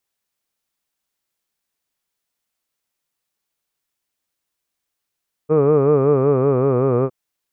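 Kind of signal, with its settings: formant vowel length 1.61 s, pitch 149 Hz, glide -3 st, vibrato depth 1.1 st, F1 450 Hz, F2 1200 Hz, F3 2400 Hz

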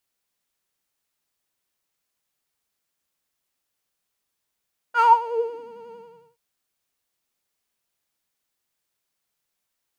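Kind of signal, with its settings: synth patch with vibrato A#5, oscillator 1 square, sub -1 dB, noise -8.5 dB, filter bandpass, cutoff 130 Hz, Q 8.5, filter envelope 3.5 oct, filter decay 0.75 s, filter sustain 20%, attack 63 ms, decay 0.19 s, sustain -13.5 dB, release 0.43 s, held 1.00 s, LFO 11 Hz, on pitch 51 cents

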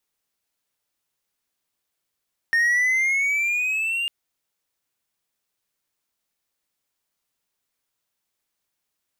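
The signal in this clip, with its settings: gliding synth tone triangle, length 1.55 s, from 1830 Hz, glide +7.5 st, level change -6.5 dB, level -14 dB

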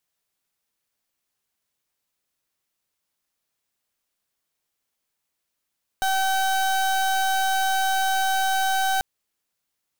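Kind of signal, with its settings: pulse 767 Hz, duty 31% -22 dBFS 2.99 s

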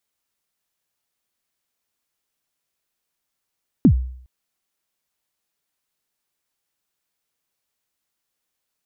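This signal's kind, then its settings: kick drum length 0.41 s, from 310 Hz, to 63 Hz, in 83 ms, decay 0.61 s, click off, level -6 dB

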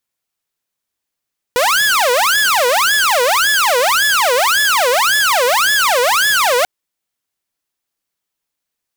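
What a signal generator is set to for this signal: siren wail 481–1720 Hz 1.8/s saw -8.5 dBFS 5.09 s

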